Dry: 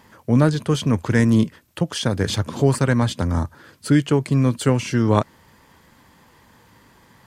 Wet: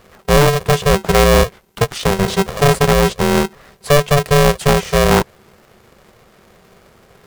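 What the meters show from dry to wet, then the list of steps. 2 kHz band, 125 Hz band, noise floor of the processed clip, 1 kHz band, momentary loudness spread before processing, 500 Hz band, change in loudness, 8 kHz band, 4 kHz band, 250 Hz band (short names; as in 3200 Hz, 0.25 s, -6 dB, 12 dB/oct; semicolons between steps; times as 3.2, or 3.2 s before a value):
+10.0 dB, +2.0 dB, -51 dBFS, +11.5 dB, 8 LU, +10.0 dB, +5.5 dB, +10.0 dB, +9.0 dB, 0.0 dB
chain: low shelf 470 Hz +7.5 dB; overloaded stage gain 5 dB; polarity switched at an audio rate 290 Hz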